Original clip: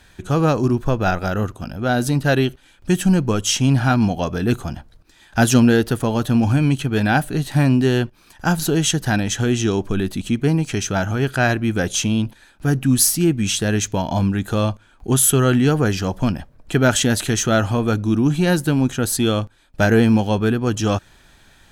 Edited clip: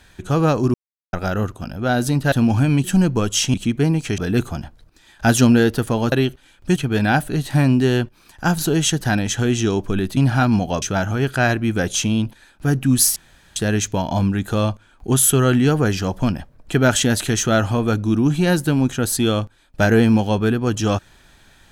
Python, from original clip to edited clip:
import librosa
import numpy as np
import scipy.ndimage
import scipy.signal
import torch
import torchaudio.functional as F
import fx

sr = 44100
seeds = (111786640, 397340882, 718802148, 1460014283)

y = fx.edit(x, sr, fx.silence(start_s=0.74, length_s=0.39),
    fx.swap(start_s=2.32, length_s=0.64, other_s=6.25, other_length_s=0.52),
    fx.swap(start_s=3.66, length_s=0.65, other_s=10.18, other_length_s=0.64),
    fx.room_tone_fill(start_s=13.16, length_s=0.4), tone=tone)